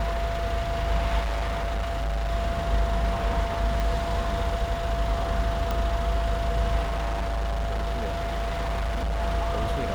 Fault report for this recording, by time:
tone 680 Hz -30 dBFS
1.2–2.32 clipped -24 dBFS
3.8 pop -15 dBFS
5.71 pop
6.83–9.21 clipped -24 dBFS

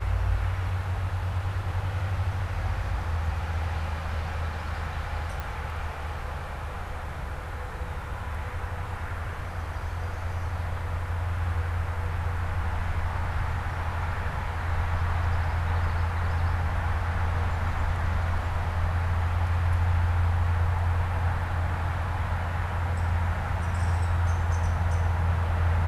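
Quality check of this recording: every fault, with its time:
5.4 pop

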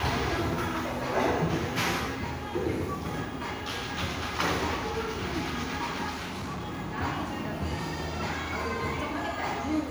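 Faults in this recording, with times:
6.09–6.8 clipped -32 dBFS

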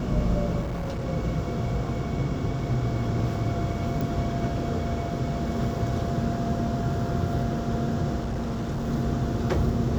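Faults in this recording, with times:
0.6–1.05 clipped -27 dBFS
4.01 pop
8.2–8.88 clipped -25.5 dBFS

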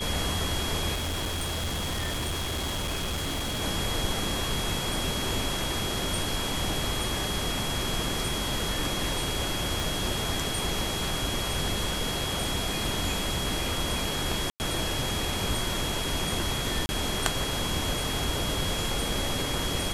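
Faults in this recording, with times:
tone 3300 Hz -34 dBFS
0.94–3.62 clipped -27 dBFS
9.8 pop
14.5–14.6 gap 99 ms
16.86–16.89 gap 30 ms

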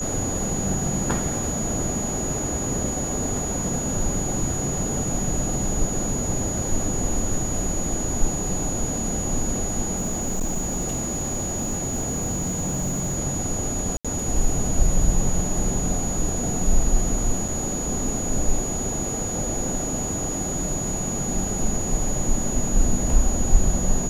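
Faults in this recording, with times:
tone 6800 Hz -28 dBFS
9.96–13.17 clipped -20.5 dBFS
13.97–14.05 gap 76 ms
17.48 gap 4.7 ms

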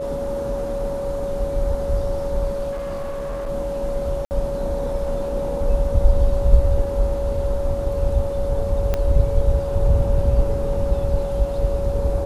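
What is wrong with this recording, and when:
tone 560 Hz -24 dBFS
2.71–3.5 clipped -24 dBFS
4.25–4.31 gap 59 ms
8.94 pop -9 dBFS

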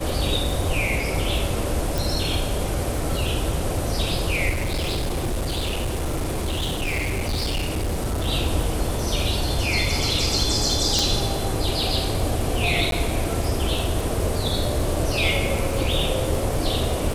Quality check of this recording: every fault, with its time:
crackle 44/s -28 dBFS
1.98 pop
4.49–8.28 clipped -21 dBFS
10.99 pop
12.91–12.92 gap 12 ms

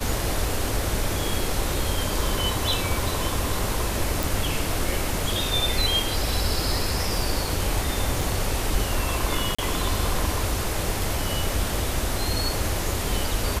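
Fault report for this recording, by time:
4.23 pop
8.21 gap 3.1 ms
9.55–9.59 gap 35 ms

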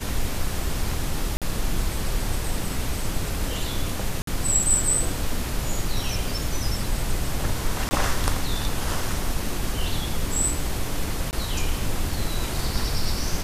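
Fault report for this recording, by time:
1.37–1.42 gap 47 ms
4.22–4.27 gap 53 ms
7.89–7.91 gap 20 ms
11.31–11.33 gap 19 ms

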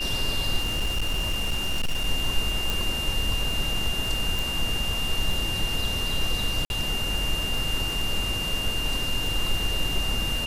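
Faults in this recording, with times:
crackle 22/s -29 dBFS
tone 2800 Hz -28 dBFS
0.57–2.08 clipped -21 dBFS
2.7 pop
4.39 pop
6.65–6.7 gap 51 ms

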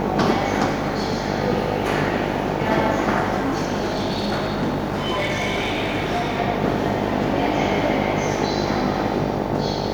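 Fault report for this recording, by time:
buzz 50 Hz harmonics 18 -26 dBFS
0.67–1.29 clipped -17 dBFS
3.36–6.4 clipped -18 dBFS

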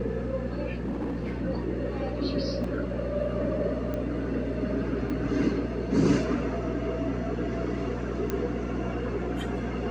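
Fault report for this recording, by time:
hum 60 Hz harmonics 4 -34 dBFS
0.74–1.38 clipped -27.5 dBFS
2.64 gap 3.5 ms
3.94 pop -21 dBFS
5.1 gap 4.5 ms
8.3 pop -15 dBFS

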